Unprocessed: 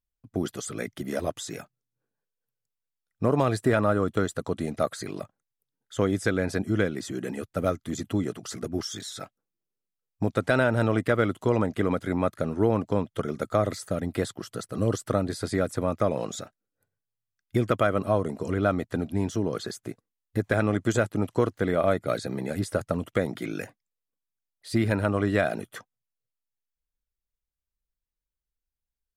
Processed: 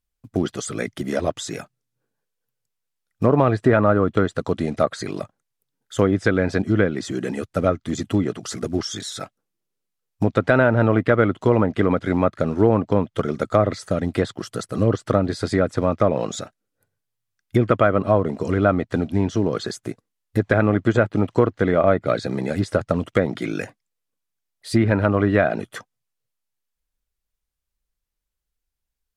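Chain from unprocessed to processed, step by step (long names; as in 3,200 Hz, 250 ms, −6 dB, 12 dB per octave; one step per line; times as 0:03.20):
floating-point word with a short mantissa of 4 bits
treble cut that deepens with the level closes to 2,200 Hz, closed at −19.5 dBFS
level +6.5 dB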